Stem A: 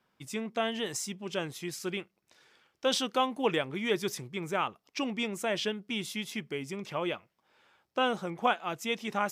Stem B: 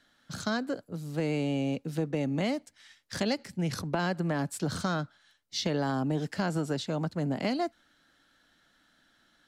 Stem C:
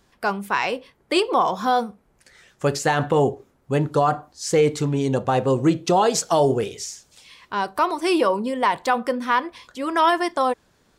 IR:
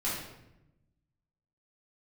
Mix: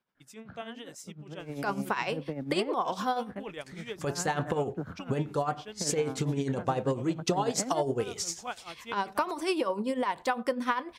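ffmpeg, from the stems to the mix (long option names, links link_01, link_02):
-filter_complex "[0:a]volume=-8.5dB,asplit=2[link_01][link_02];[1:a]lowpass=frequency=2100:width=0.5412,lowpass=frequency=2100:width=1.3066,adelay=150,volume=-3.5dB[link_03];[2:a]adelay=1400,volume=2dB[link_04];[link_02]apad=whole_len=424310[link_05];[link_03][link_05]sidechaincompress=threshold=-49dB:ratio=8:attack=16:release=112[link_06];[link_01][link_04]amix=inputs=2:normalize=0,acompressor=threshold=-24dB:ratio=6,volume=0dB[link_07];[link_06][link_07]amix=inputs=2:normalize=0,tremolo=f=10:d=0.65"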